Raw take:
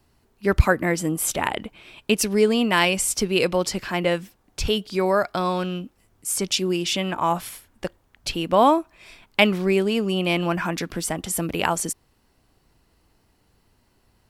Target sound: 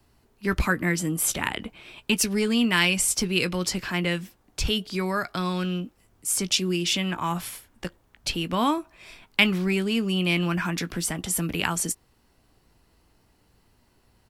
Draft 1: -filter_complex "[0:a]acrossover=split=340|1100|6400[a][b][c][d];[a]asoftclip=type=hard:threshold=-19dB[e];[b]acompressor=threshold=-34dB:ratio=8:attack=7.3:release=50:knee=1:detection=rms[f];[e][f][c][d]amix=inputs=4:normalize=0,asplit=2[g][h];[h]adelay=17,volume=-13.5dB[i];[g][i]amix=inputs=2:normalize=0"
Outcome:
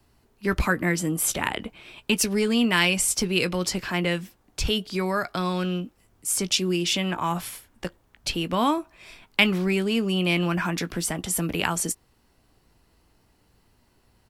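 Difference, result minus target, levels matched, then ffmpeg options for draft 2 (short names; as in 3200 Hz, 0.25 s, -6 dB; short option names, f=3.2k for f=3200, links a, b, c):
compressor: peak gain reduction -7.5 dB
-filter_complex "[0:a]acrossover=split=340|1100|6400[a][b][c][d];[a]asoftclip=type=hard:threshold=-19dB[e];[b]acompressor=threshold=-42.5dB:ratio=8:attack=7.3:release=50:knee=1:detection=rms[f];[e][f][c][d]amix=inputs=4:normalize=0,asplit=2[g][h];[h]adelay=17,volume=-13.5dB[i];[g][i]amix=inputs=2:normalize=0"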